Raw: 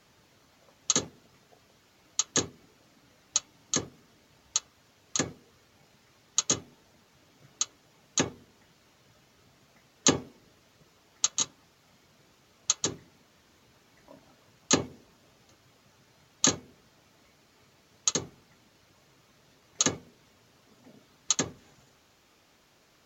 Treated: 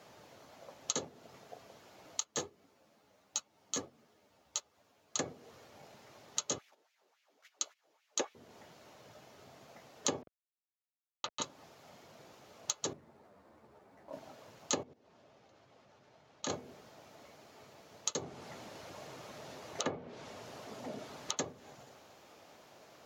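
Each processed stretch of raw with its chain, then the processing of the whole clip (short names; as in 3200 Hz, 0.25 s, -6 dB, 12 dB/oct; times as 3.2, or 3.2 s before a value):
2.2–5.16 G.711 law mismatch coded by A + ensemble effect
6.58–8.35 gate -57 dBFS, range -16 dB + bell 590 Hz -3.5 dB 2.7 oct + LFO high-pass sine 3.6 Hz 320–2500 Hz
10.22–11.42 level-crossing sampler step -40.5 dBFS + air absorption 310 m
12.93–14.13 median filter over 15 samples + ensemble effect
14.83–16.5 level quantiser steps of 17 dB + air absorption 86 m
18.22–21.37 G.711 law mismatch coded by mu + treble ducked by the level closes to 2400 Hz, closed at -29.5 dBFS
whole clip: HPF 82 Hz; bell 650 Hz +10 dB 1.4 oct; compressor 3:1, threshold -37 dBFS; gain +1 dB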